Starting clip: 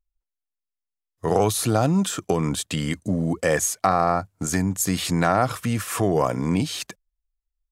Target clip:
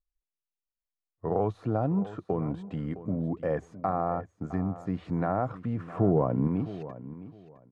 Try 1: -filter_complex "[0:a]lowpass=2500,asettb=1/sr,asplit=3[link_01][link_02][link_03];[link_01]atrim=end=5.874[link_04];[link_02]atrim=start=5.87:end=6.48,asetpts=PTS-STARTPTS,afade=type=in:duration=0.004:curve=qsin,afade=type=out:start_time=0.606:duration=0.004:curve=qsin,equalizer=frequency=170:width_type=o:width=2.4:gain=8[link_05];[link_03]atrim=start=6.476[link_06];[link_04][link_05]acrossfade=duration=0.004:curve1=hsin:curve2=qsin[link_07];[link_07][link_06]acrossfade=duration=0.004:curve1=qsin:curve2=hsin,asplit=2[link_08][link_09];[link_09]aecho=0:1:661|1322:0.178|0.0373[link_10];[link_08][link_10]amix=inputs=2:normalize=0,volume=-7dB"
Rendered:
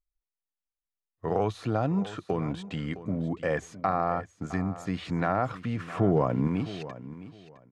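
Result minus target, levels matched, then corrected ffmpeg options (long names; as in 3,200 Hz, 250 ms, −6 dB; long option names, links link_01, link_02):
2,000 Hz band +8.5 dB
-filter_complex "[0:a]lowpass=990,asettb=1/sr,asplit=3[link_01][link_02][link_03];[link_01]atrim=end=5.874[link_04];[link_02]atrim=start=5.87:end=6.48,asetpts=PTS-STARTPTS,afade=type=in:duration=0.004:curve=qsin,afade=type=out:start_time=0.606:duration=0.004:curve=qsin,equalizer=frequency=170:width_type=o:width=2.4:gain=8[link_05];[link_03]atrim=start=6.476[link_06];[link_04][link_05]acrossfade=duration=0.004:curve1=hsin:curve2=qsin[link_07];[link_07][link_06]acrossfade=duration=0.004:curve1=qsin:curve2=hsin,asplit=2[link_08][link_09];[link_09]aecho=0:1:661|1322:0.178|0.0373[link_10];[link_08][link_10]amix=inputs=2:normalize=0,volume=-7dB"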